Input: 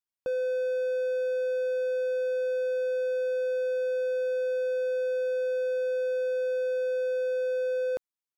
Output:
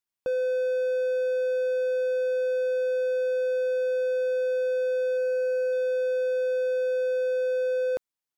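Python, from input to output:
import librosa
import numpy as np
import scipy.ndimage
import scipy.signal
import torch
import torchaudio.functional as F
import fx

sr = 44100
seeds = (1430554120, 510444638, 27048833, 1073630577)

y = fx.notch(x, sr, hz=3600.0, q=8.2, at=(5.17, 5.73))
y = y * librosa.db_to_amplitude(2.5)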